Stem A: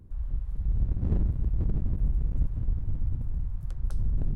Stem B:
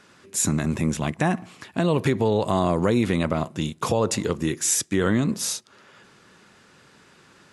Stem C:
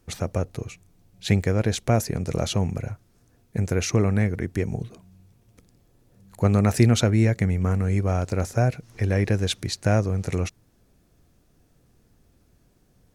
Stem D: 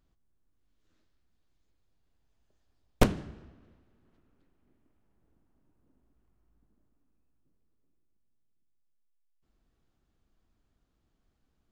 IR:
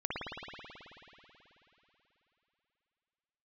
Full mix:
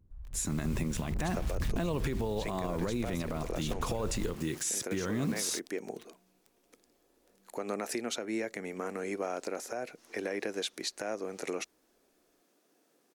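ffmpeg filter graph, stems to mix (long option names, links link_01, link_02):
-filter_complex "[0:a]asoftclip=type=tanh:threshold=-20dB,volume=-13.5dB[link_01];[1:a]acrusher=bits=6:mix=0:aa=0.000001,volume=-11.5dB[link_02];[2:a]highpass=frequency=290:width=0.5412,highpass=frequency=290:width=1.3066,acompressor=threshold=-27dB:ratio=6,adelay=1150,volume=-2.5dB[link_03];[3:a]adelay=700,volume=-12.5dB[link_04];[link_01][link_02]amix=inputs=2:normalize=0,dynaudnorm=framelen=120:gausssize=11:maxgain=12dB,alimiter=limit=-14dB:level=0:latency=1:release=358,volume=0dB[link_05];[link_03][link_04][link_05]amix=inputs=3:normalize=0,alimiter=limit=-23.5dB:level=0:latency=1:release=108"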